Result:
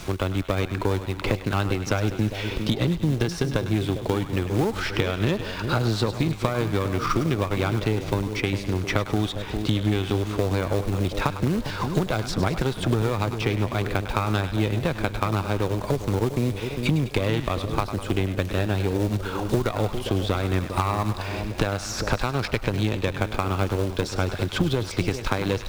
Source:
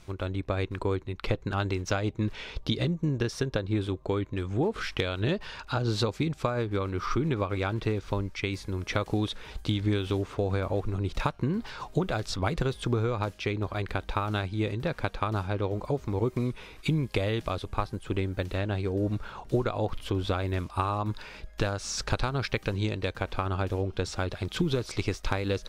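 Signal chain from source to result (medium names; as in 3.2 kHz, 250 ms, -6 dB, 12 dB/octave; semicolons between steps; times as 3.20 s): Chebyshev shaper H 6 -21 dB, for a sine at -13 dBFS; two-band feedback delay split 750 Hz, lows 402 ms, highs 101 ms, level -11 dB; in parallel at -6.5 dB: companded quantiser 4-bit; on the sum: three bands compressed up and down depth 70%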